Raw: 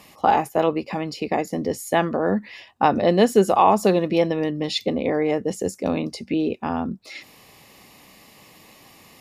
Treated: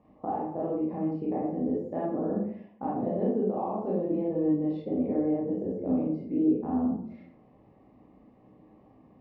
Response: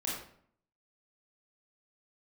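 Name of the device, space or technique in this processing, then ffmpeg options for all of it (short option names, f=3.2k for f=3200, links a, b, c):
television next door: -filter_complex "[0:a]acompressor=threshold=-21dB:ratio=4,lowpass=590[a];[1:a]atrim=start_sample=2205[b];[a][b]afir=irnorm=-1:irlink=0,volume=-6.5dB"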